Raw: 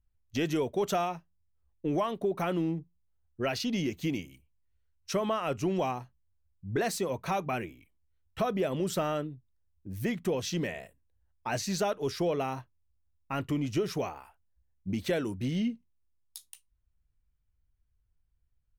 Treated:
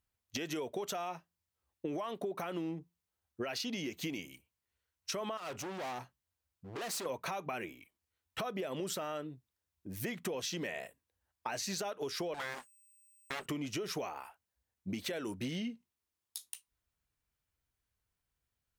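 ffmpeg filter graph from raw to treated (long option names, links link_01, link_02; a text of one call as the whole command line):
ffmpeg -i in.wav -filter_complex "[0:a]asettb=1/sr,asplit=3[link_01][link_02][link_03];[link_01]atrim=end=5.374[link_04];[link_02]atrim=start=5.37:end=7.06,asetpts=PTS-STARTPTS,afade=type=in:duration=0.004:curve=qsin,afade=type=out:start_time=1.686:duration=0.004:curve=qsin,acompressor=threshold=-31dB:ratio=3:attack=3.2:release=140:knee=1:detection=peak,asoftclip=type=hard:threshold=-40dB[link_05];[link_03]atrim=start=7.056[link_06];[link_04][link_05]acrossfade=duration=0.004:curve1=hsin:curve2=qsin[link_07];[link_07][link_06]acrossfade=duration=0.004:curve1=qsin:curve2=hsin,asettb=1/sr,asplit=3[link_08][link_09][link_10];[link_08]atrim=end=12.344[link_11];[link_09]atrim=start=12.34:end=13.46,asetpts=PTS-STARTPTS,afade=type=in:duration=0.004:curve=qsin,afade=type=out:start_time=1.116:duration=0.004:curve=qsin,equalizer=frequency=140:width_type=o:width=2.5:gain=-5.5,aeval=exprs='val(0)+0.000631*sin(2*PI*8300*n/s)':channel_layout=same,aeval=exprs='abs(val(0))':channel_layout=same[link_12];[link_10]atrim=start=13.456[link_13];[link_11][link_12]acrossfade=duration=0.004:curve1=hsin:curve2=qsin[link_14];[link_14][link_13]acrossfade=duration=0.004:curve1=qsin:curve2=hsin,highpass=frequency=460:poles=1,alimiter=level_in=3.5dB:limit=-24dB:level=0:latency=1:release=119,volume=-3.5dB,acompressor=threshold=-40dB:ratio=6,volume=5dB" out.wav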